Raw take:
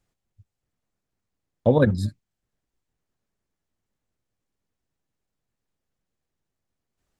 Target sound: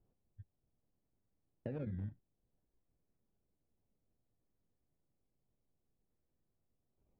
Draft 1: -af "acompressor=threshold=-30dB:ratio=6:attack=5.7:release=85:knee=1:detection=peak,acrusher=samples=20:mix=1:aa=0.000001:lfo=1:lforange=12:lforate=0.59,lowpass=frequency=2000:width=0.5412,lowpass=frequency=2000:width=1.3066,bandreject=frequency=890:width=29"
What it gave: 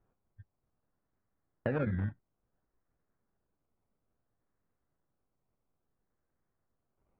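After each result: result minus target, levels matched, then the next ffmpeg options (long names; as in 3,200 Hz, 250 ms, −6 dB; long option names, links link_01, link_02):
1,000 Hz band +8.0 dB; downward compressor: peak gain reduction −8 dB
-af "acompressor=threshold=-30dB:ratio=6:attack=5.7:release=85:knee=1:detection=peak,acrusher=samples=20:mix=1:aa=0.000001:lfo=1:lforange=12:lforate=0.59,lowpass=frequency=2000:width=0.5412,lowpass=frequency=2000:width=1.3066,equalizer=frequency=1400:width=0.85:gain=-14,bandreject=frequency=890:width=29"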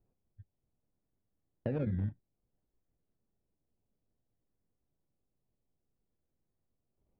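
downward compressor: peak gain reduction −8 dB
-af "acompressor=threshold=-39.5dB:ratio=6:attack=5.7:release=85:knee=1:detection=peak,acrusher=samples=20:mix=1:aa=0.000001:lfo=1:lforange=12:lforate=0.59,lowpass=frequency=2000:width=0.5412,lowpass=frequency=2000:width=1.3066,equalizer=frequency=1400:width=0.85:gain=-14,bandreject=frequency=890:width=29"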